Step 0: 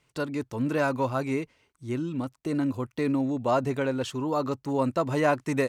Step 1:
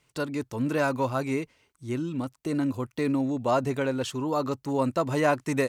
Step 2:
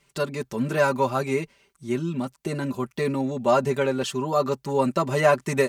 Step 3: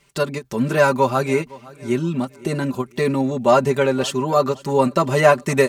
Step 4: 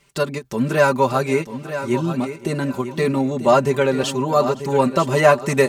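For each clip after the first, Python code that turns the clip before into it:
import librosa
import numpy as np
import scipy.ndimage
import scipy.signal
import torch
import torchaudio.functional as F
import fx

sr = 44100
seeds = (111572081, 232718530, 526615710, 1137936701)

y1 = fx.high_shelf(x, sr, hz=4900.0, db=4.5)
y2 = y1 + 0.83 * np.pad(y1, (int(5.1 * sr / 1000.0), 0))[:len(y1)]
y2 = F.gain(torch.from_numpy(y2), 2.0).numpy()
y3 = fx.echo_feedback(y2, sr, ms=511, feedback_pct=36, wet_db=-21.5)
y3 = fx.end_taper(y3, sr, db_per_s=410.0)
y3 = F.gain(torch.from_numpy(y3), 5.5).numpy()
y4 = fx.echo_feedback(y3, sr, ms=941, feedback_pct=24, wet_db=-11.0)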